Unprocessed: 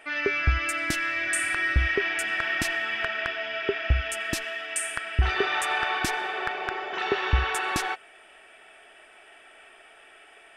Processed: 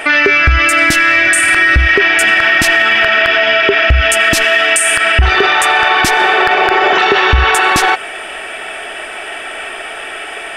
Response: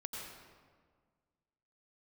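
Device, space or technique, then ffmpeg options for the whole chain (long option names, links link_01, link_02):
loud club master: -af "acompressor=threshold=-28dB:ratio=2.5,asoftclip=type=hard:threshold=-19.5dB,alimiter=level_in=28dB:limit=-1dB:release=50:level=0:latency=1,volume=-1dB"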